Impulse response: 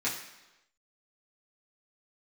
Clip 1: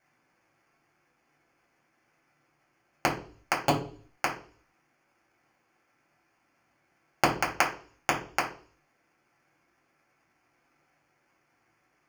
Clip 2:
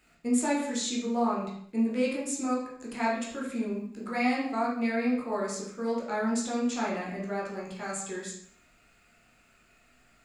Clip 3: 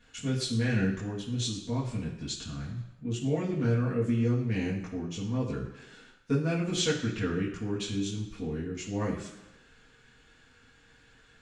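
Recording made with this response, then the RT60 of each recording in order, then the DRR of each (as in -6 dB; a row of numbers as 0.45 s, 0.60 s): 3; 0.45 s, 0.65 s, 1.0 s; -3.5 dB, -5.0 dB, -8.0 dB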